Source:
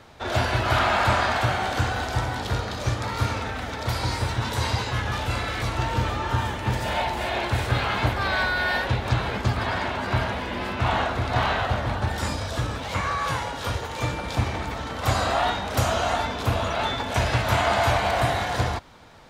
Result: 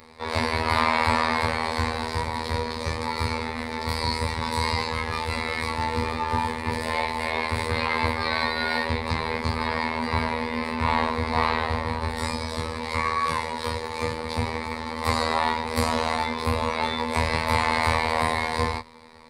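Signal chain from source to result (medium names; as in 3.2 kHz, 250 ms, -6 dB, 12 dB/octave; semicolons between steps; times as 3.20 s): chorus 0.14 Hz, delay 18.5 ms, depth 5.3 ms; robot voice 80.2 Hz; rippled EQ curve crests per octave 0.93, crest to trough 12 dB; trim +4 dB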